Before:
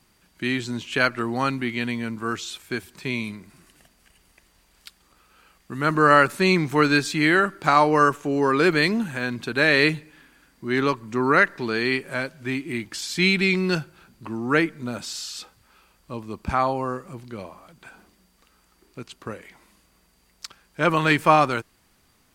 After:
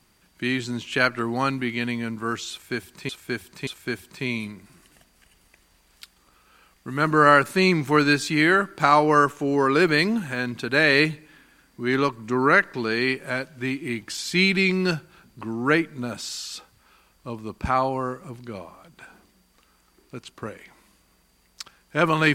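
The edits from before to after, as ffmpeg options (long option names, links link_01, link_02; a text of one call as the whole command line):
ffmpeg -i in.wav -filter_complex "[0:a]asplit=3[link_01][link_02][link_03];[link_01]atrim=end=3.092[link_04];[link_02]atrim=start=2.508:end=3.092[link_05];[link_03]atrim=start=2.508[link_06];[link_04][link_05]acrossfade=duration=0.004:curve1=hsin:curve2=hsin[link_07];[link_07][link_06]acrossfade=duration=0.004:curve1=hsin:curve2=hsin" out.wav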